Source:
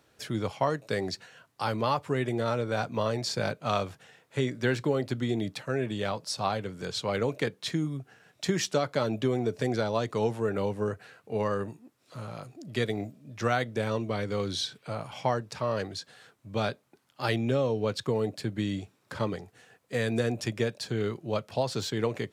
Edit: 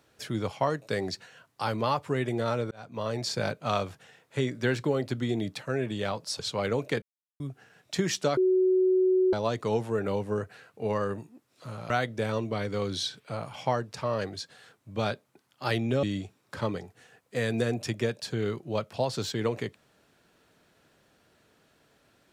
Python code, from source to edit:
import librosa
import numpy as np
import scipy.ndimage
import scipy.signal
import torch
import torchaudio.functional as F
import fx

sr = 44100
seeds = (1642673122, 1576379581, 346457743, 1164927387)

y = fx.edit(x, sr, fx.fade_in_span(start_s=2.71, length_s=0.51),
    fx.cut(start_s=6.39, length_s=0.5),
    fx.silence(start_s=7.52, length_s=0.38),
    fx.bleep(start_s=8.87, length_s=0.96, hz=372.0, db=-19.5),
    fx.cut(start_s=12.4, length_s=1.08),
    fx.cut(start_s=17.61, length_s=1.0), tone=tone)